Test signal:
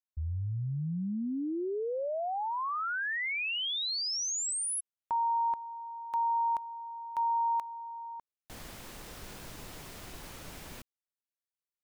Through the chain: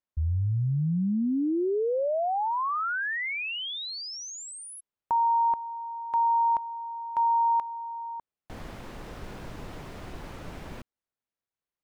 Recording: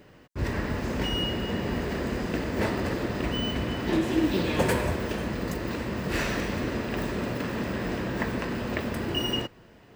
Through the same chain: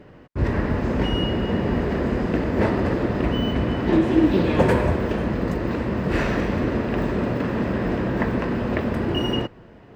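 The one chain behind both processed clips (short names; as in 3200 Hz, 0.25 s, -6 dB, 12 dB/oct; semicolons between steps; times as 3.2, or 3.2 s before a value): LPF 1300 Hz 6 dB/oct; gain +7.5 dB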